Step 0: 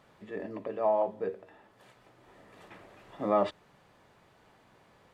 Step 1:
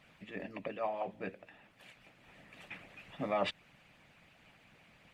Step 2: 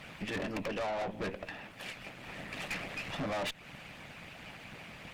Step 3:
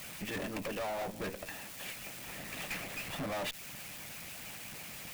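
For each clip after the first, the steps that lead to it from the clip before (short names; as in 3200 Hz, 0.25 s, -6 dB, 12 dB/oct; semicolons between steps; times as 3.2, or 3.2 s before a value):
harmonic-percussive split harmonic -15 dB; fifteen-band EQ 160 Hz +6 dB, 400 Hz -8 dB, 1000 Hz -6 dB, 2500 Hz +11 dB; gain +3 dB
compressor 3:1, threshold -42 dBFS, peak gain reduction 11.5 dB; tube stage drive 50 dB, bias 0.65; gain +17.5 dB
switching spikes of -35.5 dBFS; gain -2 dB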